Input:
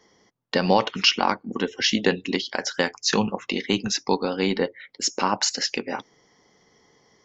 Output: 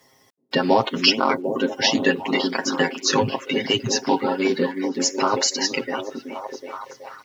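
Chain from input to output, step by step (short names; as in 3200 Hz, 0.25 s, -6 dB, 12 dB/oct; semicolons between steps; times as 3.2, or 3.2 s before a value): bin magnitudes rounded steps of 30 dB; HPF 47 Hz; comb 7.5 ms, depth 91%; requantised 10-bit, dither none; on a send: delay with a stepping band-pass 0.374 s, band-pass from 260 Hz, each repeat 0.7 oct, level -2 dB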